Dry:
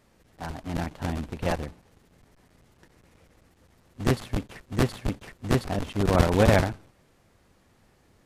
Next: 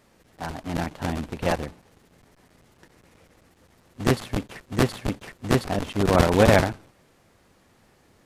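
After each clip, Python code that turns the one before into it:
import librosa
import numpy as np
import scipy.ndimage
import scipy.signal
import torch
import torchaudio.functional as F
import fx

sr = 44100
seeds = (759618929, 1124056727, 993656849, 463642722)

y = fx.low_shelf(x, sr, hz=110.0, db=-7.0)
y = y * librosa.db_to_amplitude(4.0)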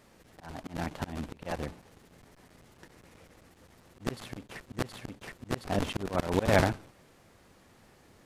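y = fx.auto_swell(x, sr, attack_ms=304.0)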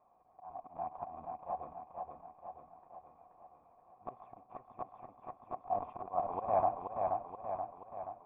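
y = fx.formant_cascade(x, sr, vowel='a')
y = fx.echo_feedback(y, sr, ms=479, feedback_pct=57, wet_db=-4.0)
y = y * librosa.db_to_amplitude(5.5)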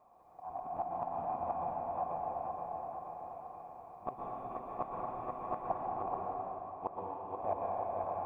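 y = fx.gate_flip(x, sr, shuts_db=-29.0, range_db=-32)
y = fx.rev_plate(y, sr, seeds[0], rt60_s=3.2, hf_ratio=0.9, predelay_ms=105, drr_db=-3.5)
y = y * librosa.db_to_amplitude(5.0)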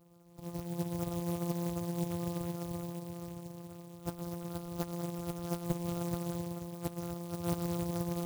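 y = np.r_[np.sort(x[:len(x) // 256 * 256].reshape(-1, 256), axis=1).ravel(), x[len(x) // 256 * 256:]]
y = fx.spec_gate(y, sr, threshold_db=-15, keep='strong')
y = fx.clock_jitter(y, sr, seeds[1], jitter_ms=0.097)
y = y * librosa.db_to_amplitude(3.0)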